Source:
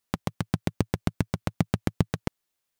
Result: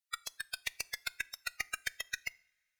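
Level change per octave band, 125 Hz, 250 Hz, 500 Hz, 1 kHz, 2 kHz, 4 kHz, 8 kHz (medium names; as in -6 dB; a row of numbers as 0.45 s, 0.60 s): -37.0 dB, -39.0 dB, -25.0 dB, -11.5 dB, +3.0 dB, +1.5 dB, +3.0 dB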